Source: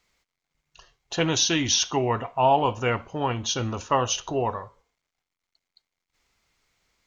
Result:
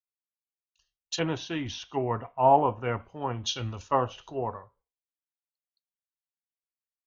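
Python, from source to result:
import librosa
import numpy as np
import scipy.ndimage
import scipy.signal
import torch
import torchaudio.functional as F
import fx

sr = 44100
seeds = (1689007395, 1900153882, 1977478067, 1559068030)

y = fx.env_lowpass_down(x, sr, base_hz=1700.0, full_db=-21.0)
y = fx.noise_reduce_blind(y, sr, reduce_db=7)
y = fx.band_widen(y, sr, depth_pct=100)
y = y * 10.0 ** (-5.0 / 20.0)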